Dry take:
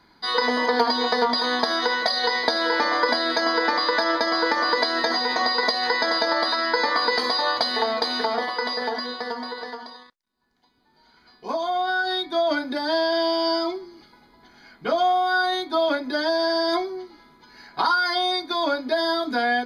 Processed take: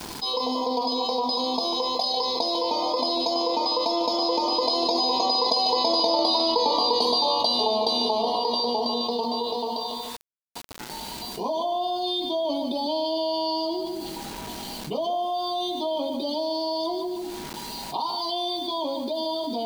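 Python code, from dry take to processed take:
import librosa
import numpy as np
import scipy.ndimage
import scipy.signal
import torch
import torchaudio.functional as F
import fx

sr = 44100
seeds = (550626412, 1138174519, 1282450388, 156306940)

y = fx.doppler_pass(x, sr, speed_mps=11, closest_m=11.0, pass_at_s=6.34)
y = scipy.signal.sosfilt(scipy.signal.cheby1(3, 1.0, [990.0, 2700.0], 'bandstop', fs=sr, output='sos'), y)
y = fx.echo_feedback(y, sr, ms=148, feedback_pct=23, wet_db=-10.0)
y = fx.quant_dither(y, sr, seeds[0], bits=12, dither='none')
y = fx.env_flatten(y, sr, amount_pct=70)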